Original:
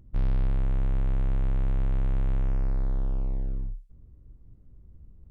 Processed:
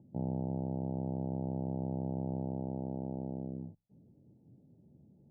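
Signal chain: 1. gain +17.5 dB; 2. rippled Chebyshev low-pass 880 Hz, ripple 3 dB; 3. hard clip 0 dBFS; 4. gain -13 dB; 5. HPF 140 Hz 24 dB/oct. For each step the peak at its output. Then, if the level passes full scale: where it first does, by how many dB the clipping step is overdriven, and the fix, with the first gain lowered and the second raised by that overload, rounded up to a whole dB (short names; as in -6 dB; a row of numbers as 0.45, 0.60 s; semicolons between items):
-3.5, -5.0, -5.0, -18.0, -25.5 dBFS; no overload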